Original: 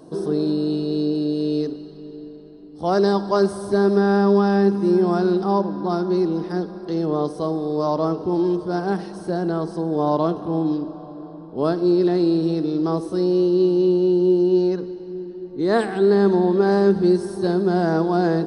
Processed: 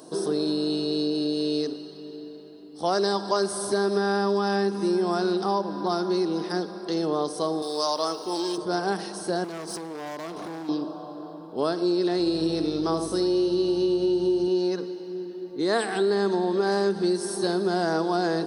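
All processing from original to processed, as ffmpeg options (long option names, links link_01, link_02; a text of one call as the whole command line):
ffmpeg -i in.wav -filter_complex "[0:a]asettb=1/sr,asplit=3[link_01][link_02][link_03];[link_01]atrim=end=7.624[link_04];[link_02]atrim=start=7.62:end=8.58,asetpts=PTS-STARTPTS,afade=type=in:duration=0.004:curve=qsin,afade=type=out:start_time=0.956:duration=0.004:curve=qsin,highpass=frequency=570:poles=1,aemphasis=mode=production:type=75fm[link_05];[link_03]atrim=start=8.576[link_06];[link_04][link_05]acrossfade=duration=0.004:curve1=hsin:curve2=qsin[link_07];[link_07][link_06]acrossfade=duration=0.004:curve1=qsin:curve2=hsin,asettb=1/sr,asplit=3[link_08][link_09][link_10];[link_08]atrim=end=9.444[link_11];[link_09]atrim=start=9.44:end=10.69,asetpts=PTS-STARTPTS,afade=type=in:duration=0.004:curve=qsin,afade=type=out:start_time=1.246:duration=0.004:curve=qsin,bass=frequency=250:gain=1,treble=frequency=4000:gain=6,acompressor=threshold=-27dB:ratio=8:attack=3.2:release=140:knee=1:detection=peak,volume=30dB,asoftclip=hard,volume=-30dB[link_12];[link_10]atrim=start=10.686[link_13];[link_11][link_12]acrossfade=duration=0.004:curve1=hsin:curve2=qsin[link_14];[link_14][link_13]acrossfade=duration=0.004:curve1=qsin:curve2=hsin,asettb=1/sr,asplit=3[link_15][link_16][link_17];[link_15]atrim=end=12.184[link_18];[link_16]atrim=start=12.18:end=14.48,asetpts=PTS-STARTPTS,afade=type=in:duration=0.004:curve=qsin,afade=type=out:start_time=2.296:duration=0.004:curve=qsin,aeval=exprs='val(0)+0.0224*(sin(2*PI*50*n/s)+sin(2*PI*2*50*n/s)/2+sin(2*PI*3*50*n/s)/3+sin(2*PI*4*50*n/s)/4+sin(2*PI*5*50*n/s)/5)':channel_layout=same,aecho=1:1:80:0.398,atrim=end_sample=101430[link_19];[link_17]atrim=start=14.476[link_20];[link_18][link_19]acrossfade=duration=0.004:curve1=hsin:curve2=qsin[link_21];[link_21][link_20]acrossfade=duration=0.004:curve1=qsin:curve2=hsin,highpass=frequency=430:poles=1,highshelf=frequency=3600:gain=11,acompressor=threshold=-23dB:ratio=3,volume=1.5dB" out.wav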